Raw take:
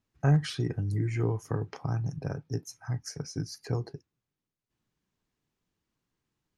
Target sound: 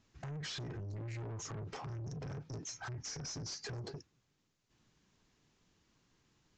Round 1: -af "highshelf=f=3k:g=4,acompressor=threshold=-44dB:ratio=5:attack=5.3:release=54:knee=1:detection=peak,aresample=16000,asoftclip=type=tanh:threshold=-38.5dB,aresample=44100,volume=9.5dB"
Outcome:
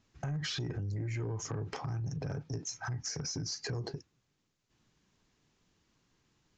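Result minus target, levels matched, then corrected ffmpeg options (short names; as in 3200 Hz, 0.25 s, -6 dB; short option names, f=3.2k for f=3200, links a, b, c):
soft clip: distortion -10 dB
-af "highshelf=f=3k:g=4,acompressor=threshold=-44dB:ratio=5:attack=5.3:release=54:knee=1:detection=peak,aresample=16000,asoftclip=type=tanh:threshold=-50dB,aresample=44100,volume=9.5dB"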